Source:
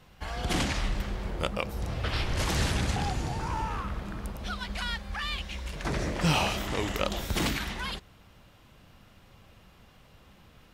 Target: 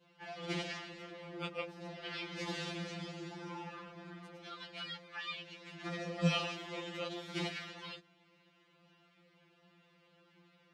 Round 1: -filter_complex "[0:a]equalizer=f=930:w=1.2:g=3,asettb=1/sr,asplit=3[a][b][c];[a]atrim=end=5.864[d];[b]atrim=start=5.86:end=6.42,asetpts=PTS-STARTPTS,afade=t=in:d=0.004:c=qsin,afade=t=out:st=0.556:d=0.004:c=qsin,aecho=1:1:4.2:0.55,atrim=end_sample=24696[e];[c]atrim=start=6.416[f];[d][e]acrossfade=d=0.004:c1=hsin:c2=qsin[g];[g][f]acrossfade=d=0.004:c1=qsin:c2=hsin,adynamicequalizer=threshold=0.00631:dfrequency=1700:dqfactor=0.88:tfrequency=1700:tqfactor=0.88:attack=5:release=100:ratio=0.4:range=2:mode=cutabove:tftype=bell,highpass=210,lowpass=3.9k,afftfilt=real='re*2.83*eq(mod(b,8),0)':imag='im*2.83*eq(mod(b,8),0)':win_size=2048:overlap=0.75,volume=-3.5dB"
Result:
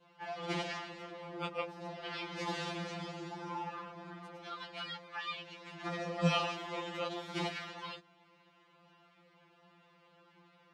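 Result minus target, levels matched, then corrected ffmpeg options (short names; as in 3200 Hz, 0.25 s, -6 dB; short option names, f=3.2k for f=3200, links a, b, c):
1000 Hz band +4.5 dB
-filter_complex "[0:a]equalizer=f=930:w=1.2:g=-5.5,asettb=1/sr,asplit=3[a][b][c];[a]atrim=end=5.864[d];[b]atrim=start=5.86:end=6.42,asetpts=PTS-STARTPTS,afade=t=in:d=0.004:c=qsin,afade=t=out:st=0.556:d=0.004:c=qsin,aecho=1:1:4.2:0.55,atrim=end_sample=24696[e];[c]atrim=start=6.416[f];[d][e]acrossfade=d=0.004:c1=hsin:c2=qsin[g];[g][f]acrossfade=d=0.004:c1=qsin:c2=hsin,adynamicequalizer=threshold=0.00631:dfrequency=1700:dqfactor=0.88:tfrequency=1700:tqfactor=0.88:attack=5:release=100:ratio=0.4:range=2:mode=cutabove:tftype=bell,highpass=210,lowpass=3.9k,afftfilt=real='re*2.83*eq(mod(b,8),0)':imag='im*2.83*eq(mod(b,8),0)':win_size=2048:overlap=0.75,volume=-3.5dB"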